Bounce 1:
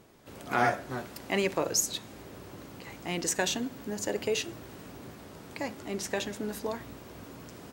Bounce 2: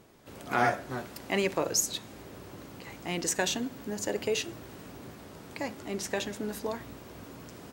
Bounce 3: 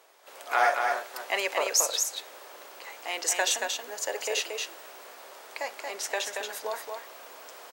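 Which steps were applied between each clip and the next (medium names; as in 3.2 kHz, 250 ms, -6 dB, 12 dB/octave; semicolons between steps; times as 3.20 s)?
no audible change
high-pass 540 Hz 24 dB/octave; on a send: delay 229 ms -4.5 dB; on the sum: trim +3.5 dB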